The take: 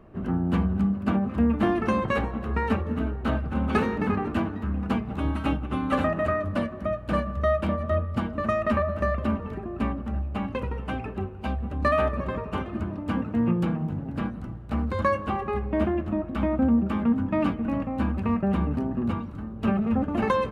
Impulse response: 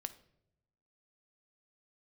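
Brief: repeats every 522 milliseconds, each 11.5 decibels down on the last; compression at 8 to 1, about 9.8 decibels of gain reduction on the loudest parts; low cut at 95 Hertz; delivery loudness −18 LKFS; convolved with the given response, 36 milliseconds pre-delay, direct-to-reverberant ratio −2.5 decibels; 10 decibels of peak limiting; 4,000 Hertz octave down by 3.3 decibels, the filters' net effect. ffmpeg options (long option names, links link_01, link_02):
-filter_complex "[0:a]highpass=95,equalizer=frequency=4000:width_type=o:gain=-5,acompressor=threshold=-29dB:ratio=8,alimiter=level_in=3.5dB:limit=-24dB:level=0:latency=1,volume=-3.5dB,aecho=1:1:522|1044|1566:0.266|0.0718|0.0194,asplit=2[link_01][link_02];[1:a]atrim=start_sample=2205,adelay=36[link_03];[link_02][link_03]afir=irnorm=-1:irlink=0,volume=5dB[link_04];[link_01][link_04]amix=inputs=2:normalize=0,volume=13.5dB"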